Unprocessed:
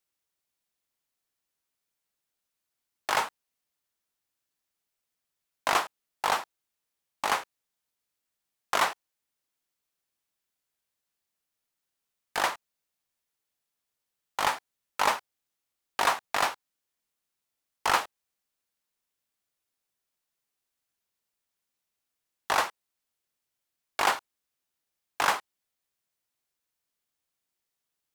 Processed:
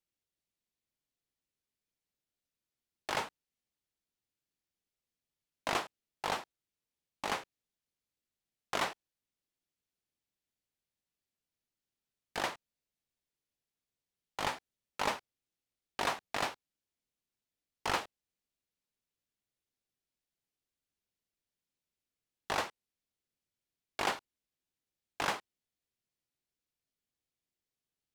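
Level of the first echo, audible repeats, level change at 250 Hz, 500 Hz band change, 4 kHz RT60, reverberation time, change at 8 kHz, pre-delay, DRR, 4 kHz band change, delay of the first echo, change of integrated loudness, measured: no echo audible, no echo audible, −1.0 dB, −5.0 dB, no reverb audible, no reverb audible, −9.0 dB, no reverb audible, no reverb audible, −6.5 dB, no echo audible, −8.0 dB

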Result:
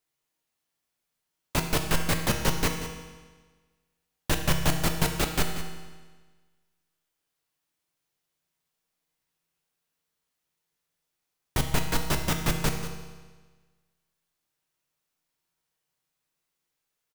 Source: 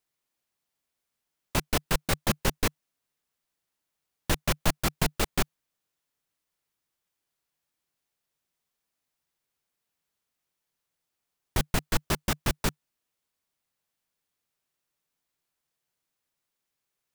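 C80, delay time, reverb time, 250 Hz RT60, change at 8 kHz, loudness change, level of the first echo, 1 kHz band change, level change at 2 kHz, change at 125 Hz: 6.5 dB, 186 ms, 1.4 s, 1.4 s, +1.5 dB, +1.5 dB, −12.5 dB, +1.5 dB, +1.5 dB, +3.0 dB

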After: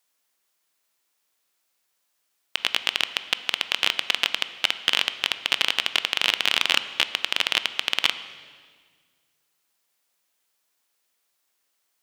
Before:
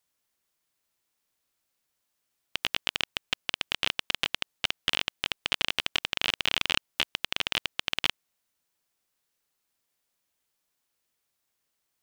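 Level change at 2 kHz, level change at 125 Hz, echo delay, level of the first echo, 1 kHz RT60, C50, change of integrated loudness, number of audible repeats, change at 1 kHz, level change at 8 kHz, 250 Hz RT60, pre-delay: +6.0 dB, can't be measured, no echo audible, no echo audible, 1.6 s, 13.0 dB, +6.0 dB, no echo audible, +5.5 dB, +6.0 dB, 2.2 s, 16 ms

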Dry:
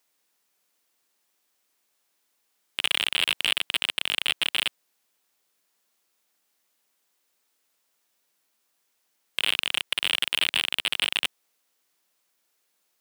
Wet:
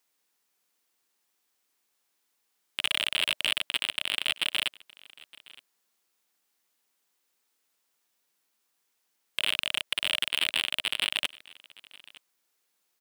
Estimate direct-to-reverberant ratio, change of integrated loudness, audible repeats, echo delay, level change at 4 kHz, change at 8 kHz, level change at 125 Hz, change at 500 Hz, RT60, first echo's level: no reverb audible, −3.0 dB, 1, 916 ms, −3.0 dB, −3.0 dB, can't be measured, −4.0 dB, no reverb audible, −22.5 dB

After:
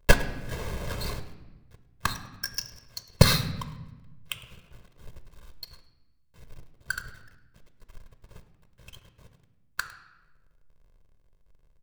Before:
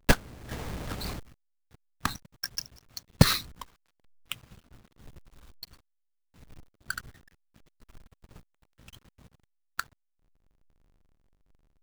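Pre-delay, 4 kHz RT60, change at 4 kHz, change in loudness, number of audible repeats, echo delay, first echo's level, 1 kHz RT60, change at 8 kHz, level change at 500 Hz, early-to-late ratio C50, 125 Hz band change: 3 ms, 0.85 s, +2.5 dB, +2.0 dB, 1, 105 ms, −19.0 dB, 1.0 s, +2.0 dB, +4.5 dB, 11.5 dB, +2.5 dB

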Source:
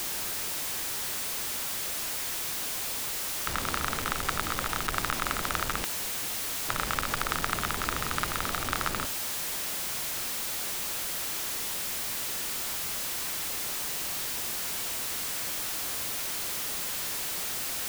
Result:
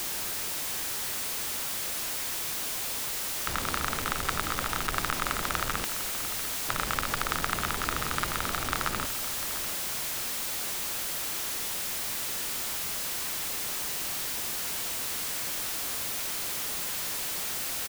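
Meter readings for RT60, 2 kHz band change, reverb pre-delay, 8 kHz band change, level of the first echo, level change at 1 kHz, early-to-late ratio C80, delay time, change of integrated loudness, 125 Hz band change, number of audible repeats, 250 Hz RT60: no reverb audible, 0.0 dB, no reverb audible, 0.0 dB, −13.0 dB, 0.0 dB, no reverb audible, 697 ms, 0.0 dB, +0.5 dB, 1, no reverb audible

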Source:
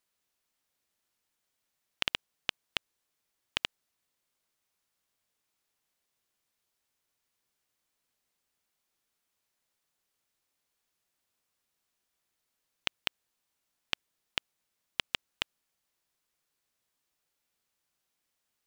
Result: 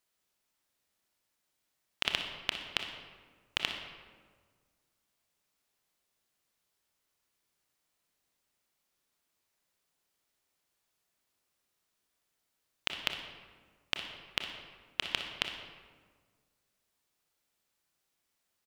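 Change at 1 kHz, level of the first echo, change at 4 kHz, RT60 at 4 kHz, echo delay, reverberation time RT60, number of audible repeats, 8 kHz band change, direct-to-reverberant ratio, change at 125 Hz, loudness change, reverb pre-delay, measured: +1.5 dB, −13.0 dB, +1.0 dB, 0.90 s, 60 ms, 1.6 s, 1, +1.0 dB, 4.0 dB, +2.0 dB, +0.5 dB, 26 ms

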